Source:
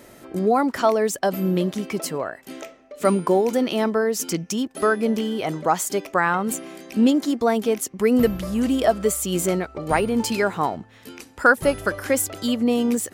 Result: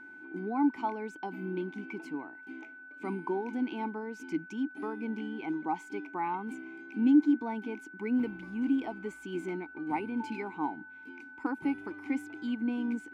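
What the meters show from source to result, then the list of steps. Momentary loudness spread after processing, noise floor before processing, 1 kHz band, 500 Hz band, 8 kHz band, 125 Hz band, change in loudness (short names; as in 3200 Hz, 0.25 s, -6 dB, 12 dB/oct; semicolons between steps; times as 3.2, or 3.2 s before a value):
12 LU, -50 dBFS, -12.5 dB, -18.5 dB, under -30 dB, -16.5 dB, -11.5 dB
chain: vowel filter u; wow and flutter 28 cents; whine 1500 Hz -47 dBFS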